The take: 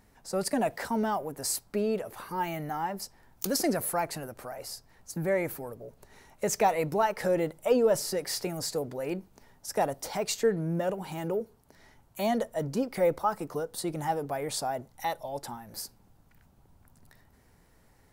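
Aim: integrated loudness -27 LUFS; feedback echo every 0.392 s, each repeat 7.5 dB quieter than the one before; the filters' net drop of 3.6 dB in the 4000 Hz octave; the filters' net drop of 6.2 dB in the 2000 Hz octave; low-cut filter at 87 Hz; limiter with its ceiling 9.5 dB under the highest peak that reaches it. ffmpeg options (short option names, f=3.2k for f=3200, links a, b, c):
-af "highpass=87,equalizer=f=2k:t=o:g=-7,equalizer=f=4k:t=o:g=-3.5,alimiter=limit=-22.5dB:level=0:latency=1,aecho=1:1:392|784|1176|1568|1960:0.422|0.177|0.0744|0.0312|0.0131,volume=6dB"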